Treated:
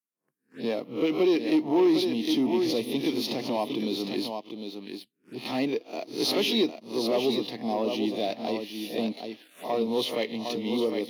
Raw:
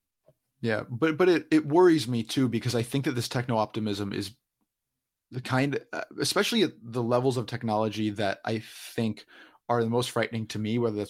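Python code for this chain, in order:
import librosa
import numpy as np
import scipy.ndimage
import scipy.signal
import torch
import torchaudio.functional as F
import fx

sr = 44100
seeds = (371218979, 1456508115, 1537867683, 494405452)

y = fx.spec_swells(x, sr, rise_s=0.33)
y = y + 10.0 ** (-8.0 / 20.0) * np.pad(y, (int(757 * sr / 1000.0), 0))[:len(y)]
y = fx.leveller(y, sr, passes=2)
y = fx.env_phaser(y, sr, low_hz=600.0, high_hz=1500.0, full_db=-26.5)
y = scipy.signal.sosfilt(scipy.signal.butter(4, 210.0, 'highpass', fs=sr, output='sos'), y)
y = y * 10.0 ** (-5.5 / 20.0)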